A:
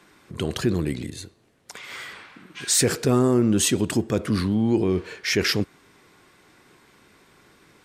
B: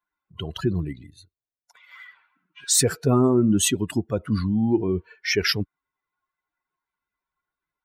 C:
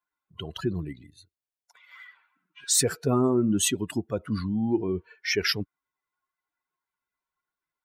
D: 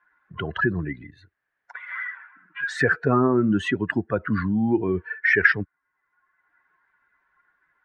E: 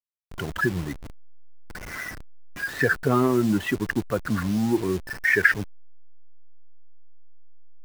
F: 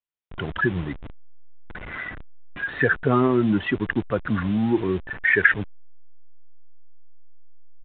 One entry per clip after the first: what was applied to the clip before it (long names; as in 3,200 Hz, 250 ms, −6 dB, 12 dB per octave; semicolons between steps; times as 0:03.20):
spectral dynamics exaggerated over time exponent 2; level +3.5 dB
low-shelf EQ 150 Hz −5.5 dB; level −3 dB
low-pass with resonance 1,700 Hz, resonance Q 7.1; multiband upward and downward compressor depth 40%; level +3.5 dB
bit-depth reduction 6 bits, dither none; slack as between gear wheels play −30.5 dBFS; level −1 dB
downsampling to 8,000 Hz; level +1.5 dB